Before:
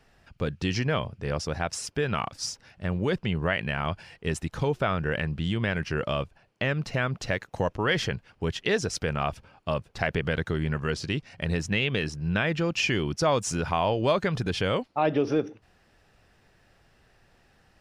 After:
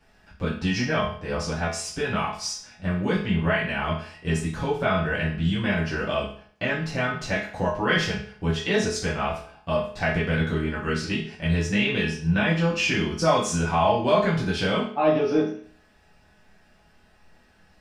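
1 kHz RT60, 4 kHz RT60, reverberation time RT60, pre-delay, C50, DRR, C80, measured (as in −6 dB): 0.50 s, 0.45 s, 0.50 s, 5 ms, 5.5 dB, −8.0 dB, 10.0 dB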